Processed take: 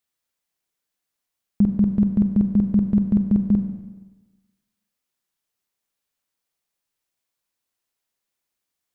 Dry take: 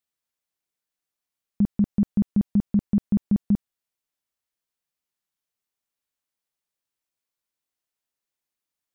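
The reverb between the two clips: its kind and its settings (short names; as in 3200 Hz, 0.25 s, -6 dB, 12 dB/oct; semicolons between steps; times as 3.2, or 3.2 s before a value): Schroeder reverb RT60 1.2 s, combs from 32 ms, DRR 6 dB; gain +4 dB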